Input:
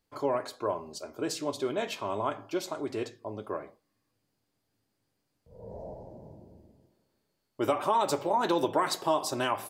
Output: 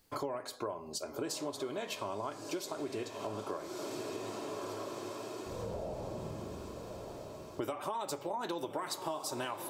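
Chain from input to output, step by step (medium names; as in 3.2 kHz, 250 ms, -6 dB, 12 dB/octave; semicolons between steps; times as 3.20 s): treble shelf 5.8 kHz +6.5 dB; echo that smears into a reverb 1197 ms, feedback 52%, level -12 dB; compression 6:1, threshold -45 dBFS, peak gain reduction 21.5 dB; trim +8.5 dB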